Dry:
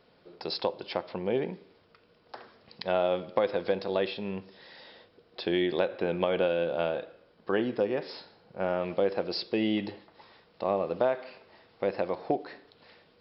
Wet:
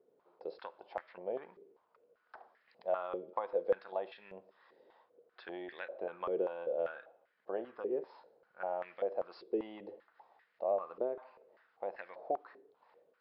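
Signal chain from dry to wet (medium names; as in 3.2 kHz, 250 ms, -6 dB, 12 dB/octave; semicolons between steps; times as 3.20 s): step-sequenced band-pass 5.1 Hz 410–1800 Hz; trim -1 dB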